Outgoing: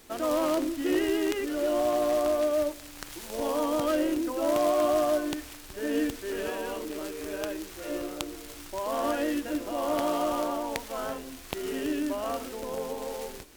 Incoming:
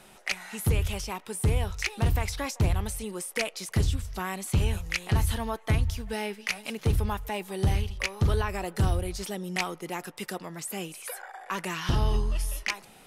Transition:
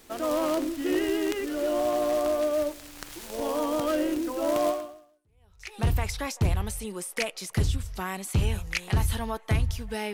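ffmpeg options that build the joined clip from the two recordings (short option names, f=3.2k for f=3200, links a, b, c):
-filter_complex "[0:a]apad=whole_dur=10.13,atrim=end=10.13,atrim=end=5.79,asetpts=PTS-STARTPTS[a];[1:a]atrim=start=0.88:end=6.32,asetpts=PTS-STARTPTS[b];[a][b]acrossfade=d=1.1:c1=exp:c2=exp"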